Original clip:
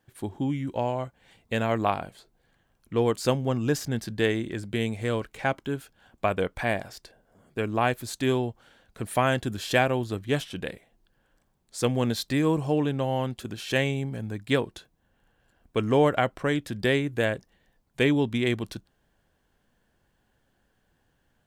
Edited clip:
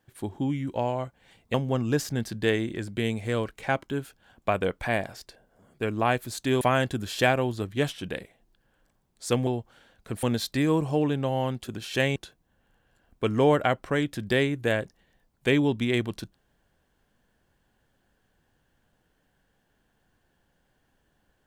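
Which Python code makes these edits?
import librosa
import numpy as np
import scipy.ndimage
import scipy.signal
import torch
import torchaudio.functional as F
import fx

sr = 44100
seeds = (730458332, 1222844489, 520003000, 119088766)

y = fx.edit(x, sr, fx.cut(start_s=1.54, length_s=1.76),
    fx.move(start_s=8.37, length_s=0.76, to_s=11.99),
    fx.cut(start_s=13.92, length_s=0.77), tone=tone)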